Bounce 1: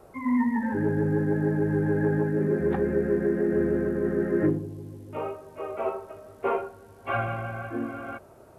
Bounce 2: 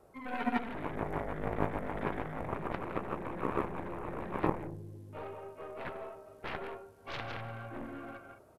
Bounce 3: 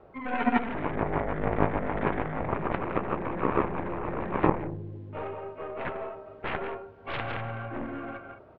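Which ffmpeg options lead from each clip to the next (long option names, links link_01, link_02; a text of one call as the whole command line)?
ffmpeg -i in.wav -filter_complex "[0:a]asplit=2[link_01][link_02];[link_02]aecho=0:1:166.2|207:0.447|0.282[link_03];[link_01][link_03]amix=inputs=2:normalize=0,aeval=exprs='0.251*(cos(1*acos(clip(val(0)/0.251,-1,1)))-cos(1*PI/2))+0.1*(cos(3*acos(clip(val(0)/0.251,-1,1)))-cos(3*PI/2))+0.00891*(cos(7*acos(clip(val(0)/0.251,-1,1)))-cos(7*PI/2))+0.00708*(cos(8*acos(clip(val(0)/0.251,-1,1)))-cos(8*PI/2))':channel_layout=same,volume=-2.5dB" out.wav
ffmpeg -i in.wav -af "lowpass=frequency=3200:width=0.5412,lowpass=frequency=3200:width=1.3066,volume=7.5dB" out.wav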